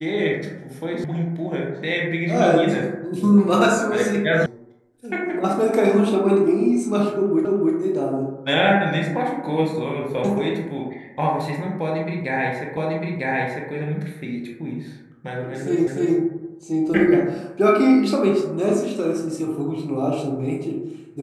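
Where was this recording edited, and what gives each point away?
1.04 sound cut off
4.46 sound cut off
7.45 repeat of the last 0.3 s
12.77 repeat of the last 0.95 s
15.87 repeat of the last 0.3 s

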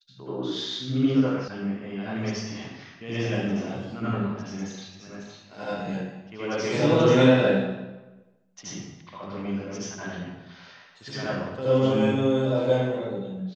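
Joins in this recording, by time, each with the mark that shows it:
1.48 sound cut off

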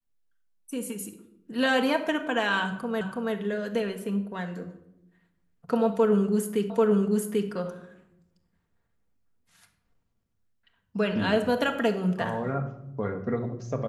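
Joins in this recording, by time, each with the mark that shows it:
3.01 repeat of the last 0.33 s
6.7 repeat of the last 0.79 s

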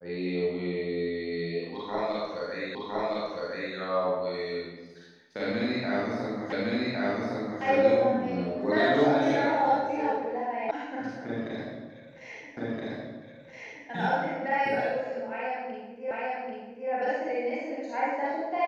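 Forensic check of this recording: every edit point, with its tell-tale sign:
2.75 repeat of the last 1.01 s
6.52 repeat of the last 1.11 s
10.71 sound cut off
12.57 repeat of the last 1.32 s
16.11 repeat of the last 0.79 s

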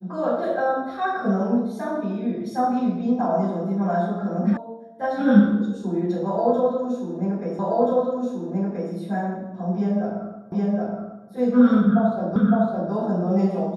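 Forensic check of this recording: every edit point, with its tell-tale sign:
4.57 sound cut off
7.59 repeat of the last 1.33 s
10.52 repeat of the last 0.77 s
12.36 repeat of the last 0.56 s

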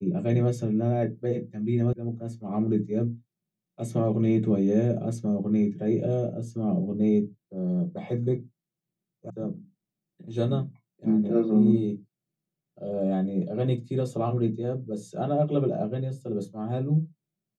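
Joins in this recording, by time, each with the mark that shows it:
1.93 sound cut off
9.3 sound cut off

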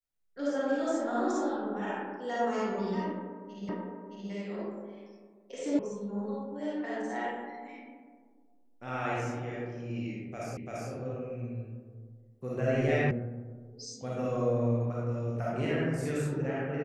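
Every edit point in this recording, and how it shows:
3.69 repeat of the last 0.62 s
5.79 sound cut off
10.57 repeat of the last 0.34 s
13.11 sound cut off

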